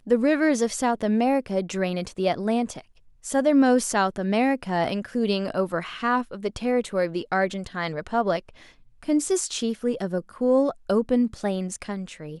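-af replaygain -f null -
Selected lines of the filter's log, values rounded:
track_gain = +4.4 dB
track_peak = 0.266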